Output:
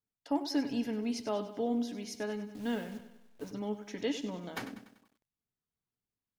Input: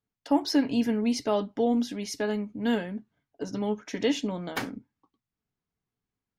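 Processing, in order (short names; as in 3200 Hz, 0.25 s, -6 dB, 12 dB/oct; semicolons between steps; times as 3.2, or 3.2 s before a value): 2.53–3.51 level-crossing sampler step -41.5 dBFS; lo-fi delay 97 ms, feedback 55%, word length 9-bit, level -12 dB; gain -8 dB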